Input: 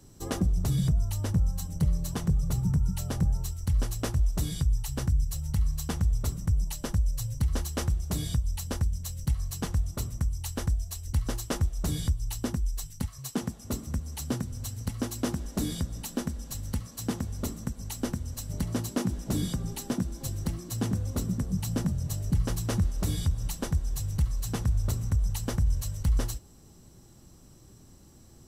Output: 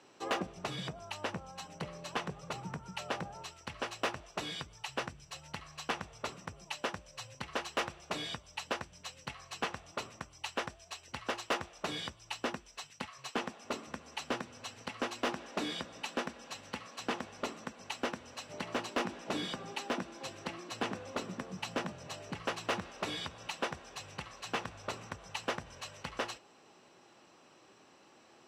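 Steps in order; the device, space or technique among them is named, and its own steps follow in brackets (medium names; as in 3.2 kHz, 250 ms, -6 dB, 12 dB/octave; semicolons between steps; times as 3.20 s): megaphone (band-pass 600–2900 Hz; peaking EQ 2.6 kHz +7 dB 0.33 oct; hard clipper -32.5 dBFS, distortion -15 dB); trim +6.5 dB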